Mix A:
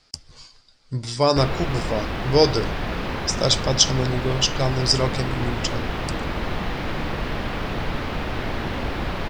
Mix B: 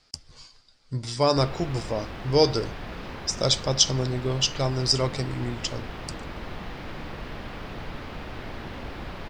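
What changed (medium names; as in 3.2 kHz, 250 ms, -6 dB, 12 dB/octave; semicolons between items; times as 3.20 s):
speech -3.0 dB; background -10.0 dB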